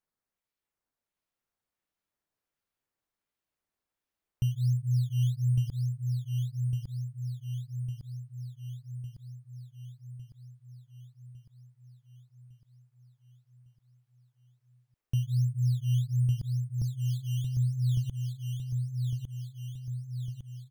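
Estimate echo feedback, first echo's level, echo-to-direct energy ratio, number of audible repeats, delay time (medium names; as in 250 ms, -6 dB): 58%, -4.0 dB, -2.0 dB, 7, 1155 ms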